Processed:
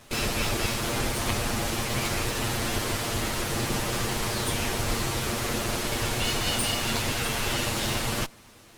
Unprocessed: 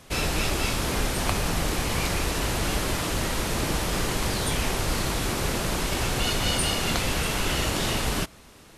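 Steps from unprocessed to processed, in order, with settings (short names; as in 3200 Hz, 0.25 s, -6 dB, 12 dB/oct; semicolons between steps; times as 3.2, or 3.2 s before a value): minimum comb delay 8.6 ms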